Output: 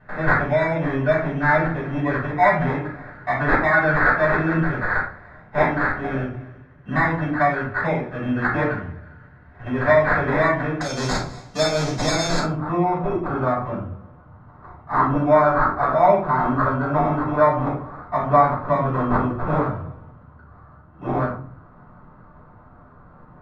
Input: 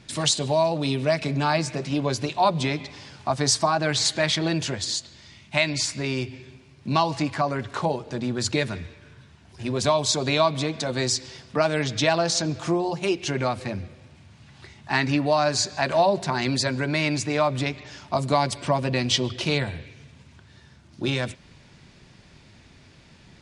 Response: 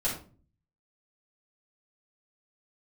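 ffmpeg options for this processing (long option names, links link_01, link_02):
-filter_complex "[0:a]acrusher=samples=15:mix=1:aa=0.000001,asetnsamples=nb_out_samples=441:pad=0,asendcmd='10.81 lowpass f 6000;12.39 lowpass f 1200',lowpass=frequency=1700:width_type=q:width=3.8[link_01];[1:a]atrim=start_sample=2205[link_02];[link_01][link_02]afir=irnorm=-1:irlink=0,volume=-7dB"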